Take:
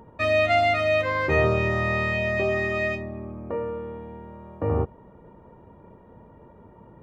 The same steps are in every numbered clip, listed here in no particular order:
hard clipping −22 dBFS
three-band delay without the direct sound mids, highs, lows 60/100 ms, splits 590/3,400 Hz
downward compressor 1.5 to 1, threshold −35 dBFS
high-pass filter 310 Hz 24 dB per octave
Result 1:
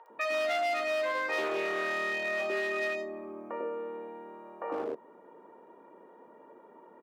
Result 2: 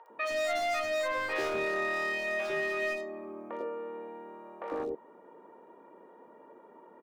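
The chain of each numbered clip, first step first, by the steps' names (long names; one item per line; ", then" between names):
three-band delay without the direct sound, then hard clipping, then high-pass filter, then downward compressor
high-pass filter, then hard clipping, then downward compressor, then three-band delay without the direct sound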